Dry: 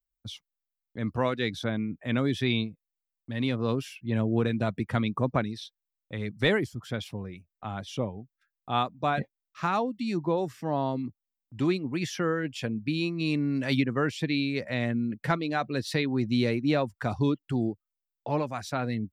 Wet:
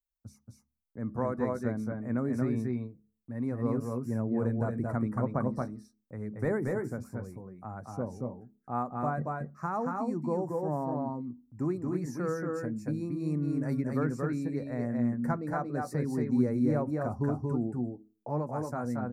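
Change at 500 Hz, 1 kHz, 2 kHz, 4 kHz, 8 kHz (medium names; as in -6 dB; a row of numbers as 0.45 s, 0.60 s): -3.0 dB, -4.0 dB, -11.0 dB, under -25 dB, -7.0 dB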